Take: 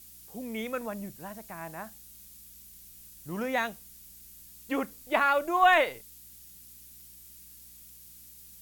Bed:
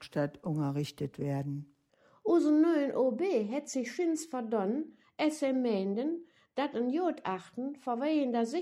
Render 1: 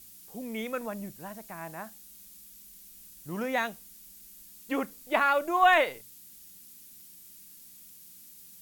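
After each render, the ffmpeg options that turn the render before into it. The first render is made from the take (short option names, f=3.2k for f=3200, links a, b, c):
-af "bandreject=f=60:t=h:w=4,bandreject=f=120:t=h:w=4"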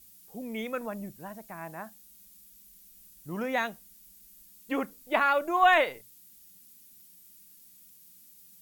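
-af "afftdn=nr=6:nf=-52"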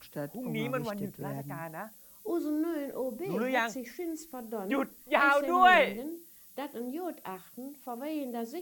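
-filter_complex "[1:a]volume=-6dB[a];[0:a][a]amix=inputs=2:normalize=0"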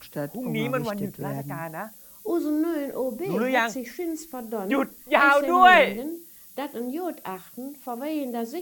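-af "volume=6.5dB"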